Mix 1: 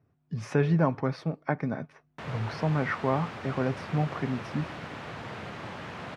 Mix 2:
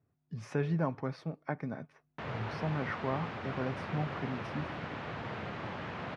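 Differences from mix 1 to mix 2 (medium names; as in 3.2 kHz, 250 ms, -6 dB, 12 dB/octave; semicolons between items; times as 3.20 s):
speech -7.5 dB; background: add distance through air 130 m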